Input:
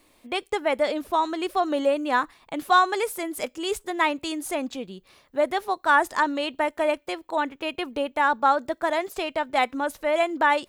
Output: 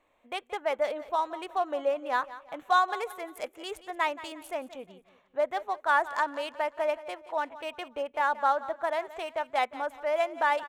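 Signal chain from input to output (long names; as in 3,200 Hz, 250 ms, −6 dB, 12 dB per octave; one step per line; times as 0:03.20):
adaptive Wiener filter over 9 samples
low shelf with overshoot 440 Hz −7 dB, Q 1.5
on a send: repeating echo 177 ms, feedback 37%, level −16 dB
on the sum: level −6 dB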